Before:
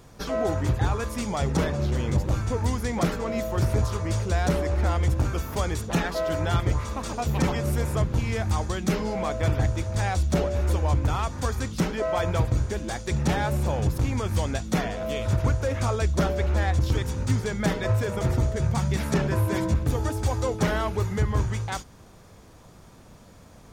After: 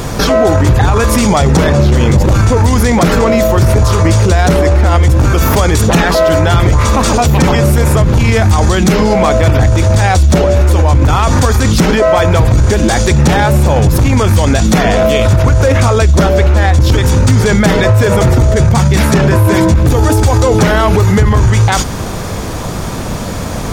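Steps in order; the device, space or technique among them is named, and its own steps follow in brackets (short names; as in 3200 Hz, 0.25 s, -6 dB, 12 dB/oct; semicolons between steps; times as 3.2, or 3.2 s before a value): loud club master (compressor 2.5:1, threshold -25 dBFS, peak gain reduction 5.5 dB; hard clip -20 dBFS, distortion -25 dB; maximiser +32 dB); gain -1 dB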